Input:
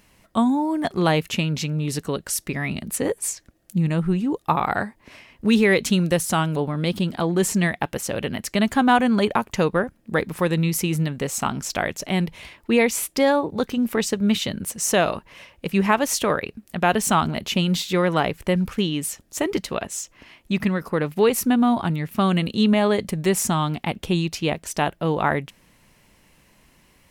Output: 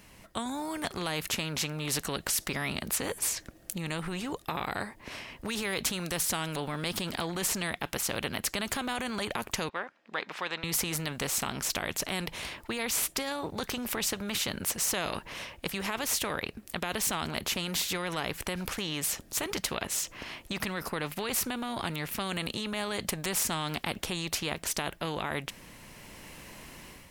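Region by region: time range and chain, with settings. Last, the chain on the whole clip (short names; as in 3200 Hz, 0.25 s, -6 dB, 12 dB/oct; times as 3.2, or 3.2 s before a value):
9.69–10.64 HPF 860 Hz + air absorption 180 m
whole clip: AGC gain up to 8 dB; maximiser +9.5 dB; spectral compressor 2:1; gain -8.5 dB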